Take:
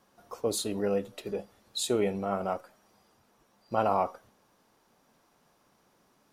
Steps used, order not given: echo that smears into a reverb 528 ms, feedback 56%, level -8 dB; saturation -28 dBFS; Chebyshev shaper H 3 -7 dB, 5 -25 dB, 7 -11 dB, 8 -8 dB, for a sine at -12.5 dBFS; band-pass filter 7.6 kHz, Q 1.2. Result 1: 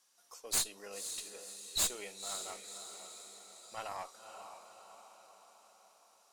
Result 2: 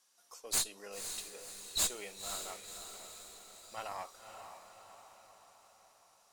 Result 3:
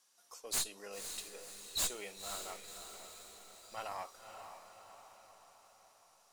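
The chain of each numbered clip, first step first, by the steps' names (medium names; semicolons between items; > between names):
band-pass filter > saturation > echo that smears into a reverb > Chebyshev shaper; band-pass filter > saturation > Chebyshev shaper > echo that smears into a reverb; band-pass filter > Chebyshev shaper > saturation > echo that smears into a reverb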